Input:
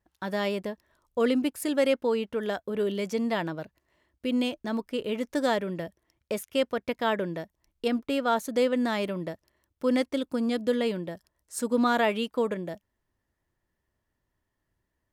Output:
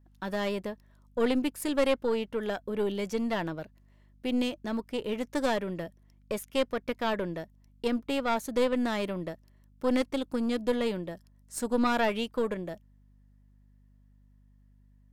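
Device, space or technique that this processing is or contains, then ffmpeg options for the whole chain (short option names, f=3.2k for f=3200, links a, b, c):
valve amplifier with mains hum: -af "aeval=exprs='(tanh(6.31*val(0)+0.65)-tanh(0.65))/6.31':c=same,aeval=exprs='val(0)+0.001*(sin(2*PI*50*n/s)+sin(2*PI*2*50*n/s)/2+sin(2*PI*3*50*n/s)/3+sin(2*PI*4*50*n/s)/4+sin(2*PI*5*50*n/s)/5)':c=same,volume=1.5dB"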